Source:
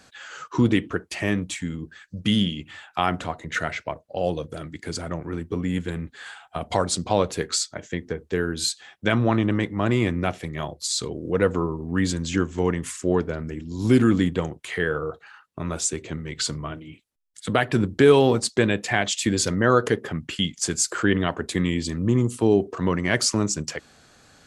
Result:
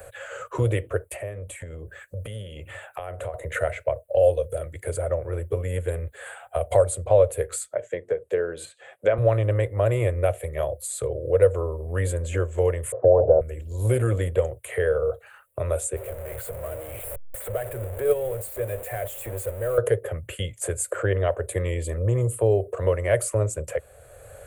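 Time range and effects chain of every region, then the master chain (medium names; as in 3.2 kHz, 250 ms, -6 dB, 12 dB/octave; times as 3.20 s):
1.16–3.34 s: high-pass 59 Hz + compression 5:1, threshold -35 dBFS
7.68–9.18 s: high-pass 160 Hz 24 dB/octave + low-pass that closes with the level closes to 2.1 kHz, closed at -20 dBFS
12.92–13.41 s: Chebyshev band-pass 110–700 Hz, order 4 + peaking EQ 500 Hz +13 dB 0.42 oct + spectrum-flattening compressor 4:1
15.96–19.78 s: jump at every zero crossing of -19 dBFS + gate -10 dBFS, range -16 dB + peaking EQ 160 Hz -8 dB 0.24 oct
whole clip: FFT filter 110 Hz 0 dB, 170 Hz -22 dB, 270 Hz -26 dB, 550 Hz +8 dB, 830 Hz -12 dB, 2.4 kHz -12 dB, 5.4 kHz -28 dB, 8.7 kHz 0 dB, 13 kHz +6 dB; three bands compressed up and down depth 40%; trim +5.5 dB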